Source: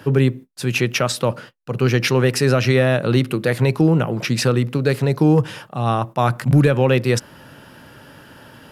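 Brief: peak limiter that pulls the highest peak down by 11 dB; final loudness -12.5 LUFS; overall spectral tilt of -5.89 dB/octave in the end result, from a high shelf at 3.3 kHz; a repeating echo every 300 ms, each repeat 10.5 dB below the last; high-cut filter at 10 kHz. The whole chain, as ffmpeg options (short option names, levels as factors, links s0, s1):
-af "lowpass=10000,highshelf=f=3300:g=-6.5,alimiter=limit=0.141:level=0:latency=1,aecho=1:1:300|600|900:0.299|0.0896|0.0269,volume=5.01"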